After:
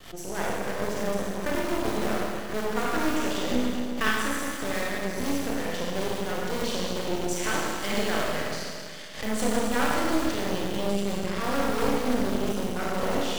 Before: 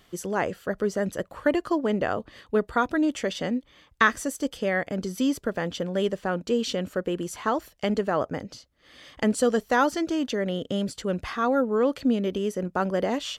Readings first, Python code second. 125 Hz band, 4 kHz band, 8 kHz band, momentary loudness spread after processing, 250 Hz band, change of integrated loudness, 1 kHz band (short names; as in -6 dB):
-1.0 dB, +2.5 dB, +4.0 dB, 5 LU, -2.5 dB, -2.0 dB, -1.5 dB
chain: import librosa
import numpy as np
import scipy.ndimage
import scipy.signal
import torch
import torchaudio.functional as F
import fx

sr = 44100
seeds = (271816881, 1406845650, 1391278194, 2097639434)

p1 = fx.spec_box(x, sr, start_s=7.28, length_s=1.74, low_hz=1400.0, high_hz=9000.0, gain_db=9)
p2 = (np.mod(10.0 ** (20.5 / 20.0) * p1 + 1.0, 2.0) - 1.0) / 10.0 ** (20.5 / 20.0)
p3 = p1 + F.gain(torch.from_numpy(p2), -7.0).numpy()
p4 = fx.rev_schroeder(p3, sr, rt60_s=2.2, comb_ms=25, drr_db=-5.5)
p5 = np.maximum(p4, 0.0)
p6 = fx.pre_swell(p5, sr, db_per_s=110.0)
y = F.gain(torch.from_numpy(p6), -6.0).numpy()